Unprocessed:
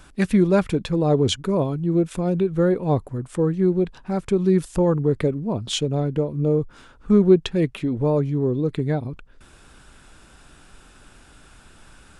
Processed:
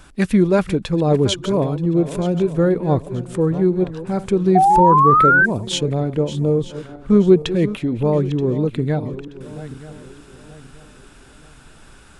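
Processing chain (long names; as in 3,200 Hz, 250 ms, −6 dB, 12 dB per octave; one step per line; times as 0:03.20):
feedback delay that plays each chunk backwards 464 ms, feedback 57%, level −13.5 dB
sound drawn into the spectrogram rise, 0:04.55–0:05.46, 720–1,600 Hz −15 dBFS
level +2.5 dB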